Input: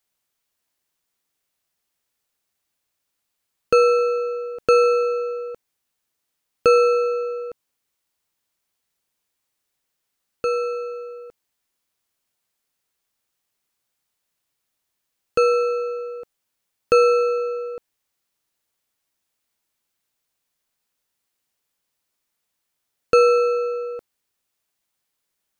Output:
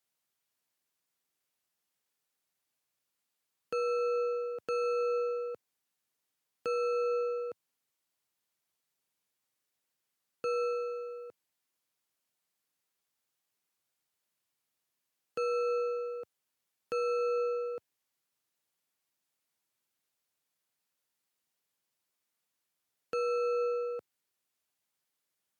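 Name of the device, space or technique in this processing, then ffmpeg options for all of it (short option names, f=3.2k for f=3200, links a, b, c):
podcast mastering chain: -af "highpass=f=95:w=0.5412,highpass=f=95:w=1.3066,acompressor=threshold=-19dB:ratio=4,alimiter=limit=-18.5dB:level=0:latency=1:release=22,volume=-6dB" -ar 44100 -c:a libmp3lame -b:a 96k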